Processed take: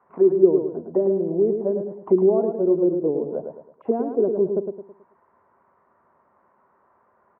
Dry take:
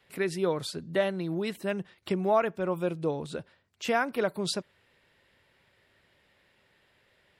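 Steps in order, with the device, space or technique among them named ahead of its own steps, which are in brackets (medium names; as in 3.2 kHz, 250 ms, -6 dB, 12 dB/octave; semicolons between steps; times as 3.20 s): 0.55–1.77 s: steep low-pass 2.3 kHz; envelope filter bass rig (touch-sensitive low-pass 370–1200 Hz down, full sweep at -25.5 dBFS; cabinet simulation 84–2000 Hz, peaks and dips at 120 Hz -7 dB, 230 Hz +6 dB, 390 Hz +5 dB, 690 Hz +7 dB, 990 Hz +8 dB, 1.8 kHz -4 dB); feedback delay 108 ms, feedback 38%, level -6 dB; trim -1.5 dB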